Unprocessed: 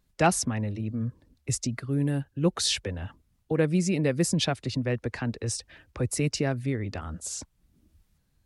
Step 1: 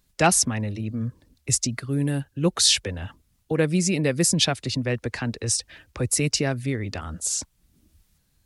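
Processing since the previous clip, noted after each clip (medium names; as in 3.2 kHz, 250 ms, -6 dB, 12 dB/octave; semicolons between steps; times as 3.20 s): treble shelf 2.5 kHz +8 dB; trim +2 dB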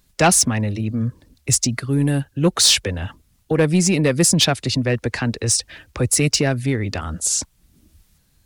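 saturation -13 dBFS, distortion -18 dB; trim +6.5 dB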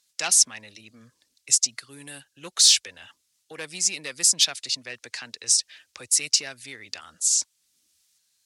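band-pass filter 6.1 kHz, Q 0.95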